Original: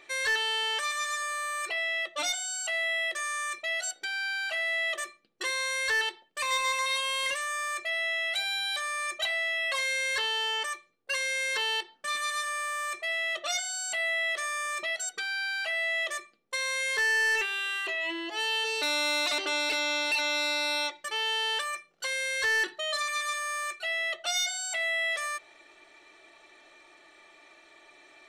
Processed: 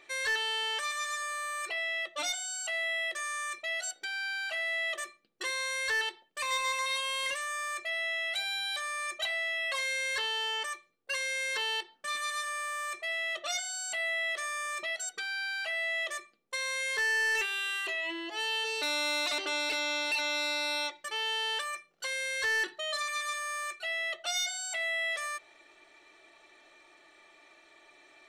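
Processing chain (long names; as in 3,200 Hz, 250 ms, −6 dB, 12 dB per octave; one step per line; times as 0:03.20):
0:17.35–0:18.01: high-shelf EQ 5,000 Hz +6.5 dB
level −3 dB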